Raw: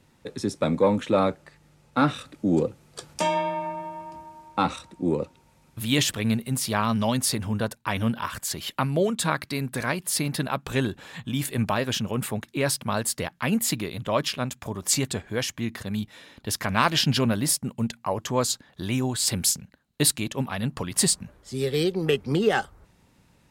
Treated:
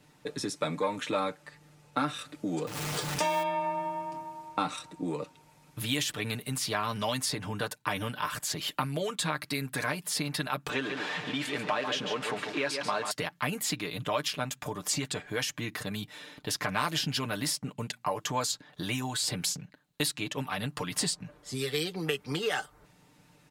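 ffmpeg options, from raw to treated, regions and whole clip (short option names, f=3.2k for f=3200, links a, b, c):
-filter_complex "[0:a]asettb=1/sr,asplit=3[a][b][c];[a]atrim=end=2.674[d];[b]atrim=start=2.67:end=3.43,asetpts=PTS-STARTPTS,afade=t=in:d=0.004:c=qsin,afade=t=out:st=0.756:d=0.004:c=qsin,aeval=exprs='val(0)+0.5*0.0251*sgn(val(0))':c=same,acompressor=mode=upward:threshold=-28dB:ratio=2.5:attack=3.2:release=140:knee=2.83:detection=peak[e];[c]atrim=start=3.426[f];[d][e]acrossfade=d=0.004:c1=hsin:c2=qsin[g];[g][f]acrossfade=d=0.004:c1=qsin:c2=hsin,asettb=1/sr,asplit=3[h][i][j];[h]atrim=end=10.694[k];[i]atrim=start=10.69:end=13.11,asetpts=PTS-STARTPTS,afade=t=in:d=0.004:c=qsin,afade=t=out:st=2.416:d=0.004:c=qsin,aeval=exprs='val(0)+0.5*0.0282*sgn(val(0))':c=same,highpass=270,lowpass=3.7k,aecho=1:1:140:0.376,atrim=end_sample=106722[l];[j]atrim=start=13.106[m];[k][l]acrossfade=d=0.004:c1=hsin:c2=qsin[n];[n][m]acrossfade=d=0.004:c1=qsin:c2=hsin,lowshelf=f=95:g=-11,aecho=1:1:6.7:0.65,acrossover=split=920|6500[o][p][q];[o]acompressor=threshold=-33dB:ratio=4[r];[p]acompressor=threshold=-31dB:ratio=4[s];[q]acompressor=threshold=-40dB:ratio=4[t];[r][s][t]amix=inputs=3:normalize=0"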